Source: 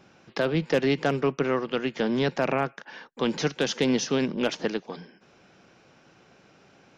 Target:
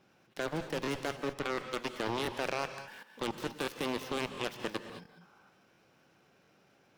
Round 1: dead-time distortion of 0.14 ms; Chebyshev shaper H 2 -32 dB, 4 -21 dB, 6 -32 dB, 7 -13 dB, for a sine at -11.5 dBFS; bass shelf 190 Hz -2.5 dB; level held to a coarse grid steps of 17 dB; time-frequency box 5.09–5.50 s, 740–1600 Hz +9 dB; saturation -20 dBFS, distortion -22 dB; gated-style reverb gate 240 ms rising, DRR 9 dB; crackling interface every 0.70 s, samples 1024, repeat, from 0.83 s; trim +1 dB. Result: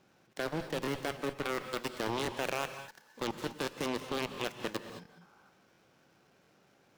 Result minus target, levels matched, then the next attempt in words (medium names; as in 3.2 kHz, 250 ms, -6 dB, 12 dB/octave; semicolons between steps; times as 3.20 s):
dead-time distortion: distortion +9 dB
dead-time distortion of 0.037 ms; Chebyshev shaper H 2 -32 dB, 4 -21 dB, 6 -32 dB, 7 -13 dB, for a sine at -11.5 dBFS; bass shelf 190 Hz -2.5 dB; level held to a coarse grid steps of 17 dB; time-frequency box 5.09–5.50 s, 740–1600 Hz +9 dB; saturation -20 dBFS, distortion -23 dB; gated-style reverb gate 240 ms rising, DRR 9 dB; crackling interface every 0.70 s, samples 1024, repeat, from 0.83 s; trim +1 dB